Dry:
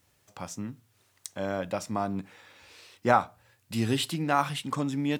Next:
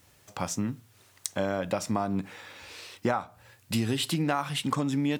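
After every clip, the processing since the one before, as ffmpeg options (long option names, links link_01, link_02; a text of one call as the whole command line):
ffmpeg -i in.wav -af "acompressor=threshold=-31dB:ratio=12,volume=7.5dB" out.wav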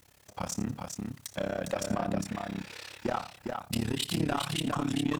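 ffmpeg -i in.wav -af "asoftclip=type=tanh:threshold=-23.5dB,tremolo=f=34:d=0.974,aecho=1:1:83|406:0.178|0.596,volume=3dB" out.wav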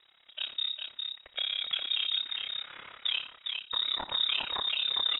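ffmpeg -i in.wav -af "lowpass=frequency=3300:width_type=q:width=0.5098,lowpass=frequency=3300:width_type=q:width=0.6013,lowpass=frequency=3300:width_type=q:width=0.9,lowpass=frequency=3300:width_type=q:width=2.563,afreqshift=-3900" out.wav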